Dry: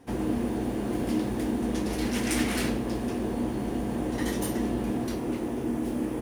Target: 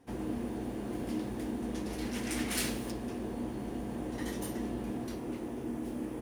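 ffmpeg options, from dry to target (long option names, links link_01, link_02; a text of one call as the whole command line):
ffmpeg -i in.wav -filter_complex "[0:a]asplit=3[link_01][link_02][link_03];[link_01]afade=type=out:start_time=2.5:duration=0.02[link_04];[link_02]highshelf=frequency=2800:gain=11.5,afade=type=in:start_time=2.5:duration=0.02,afade=type=out:start_time=2.9:duration=0.02[link_05];[link_03]afade=type=in:start_time=2.9:duration=0.02[link_06];[link_04][link_05][link_06]amix=inputs=3:normalize=0,volume=-8dB" out.wav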